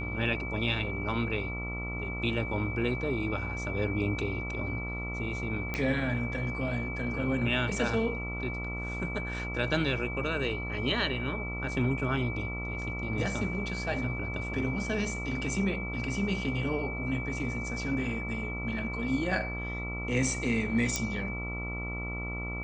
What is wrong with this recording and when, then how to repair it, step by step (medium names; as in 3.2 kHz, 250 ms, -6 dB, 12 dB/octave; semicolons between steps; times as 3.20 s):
buzz 60 Hz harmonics 23 -37 dBFS
whine 2.3 kHz -37 dBFS
5.74 s: pop -18 dBFS
20.96 s: pop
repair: de-click; band-stop 2.3 kHz, Q 30; de-hum 60 Hz, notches 23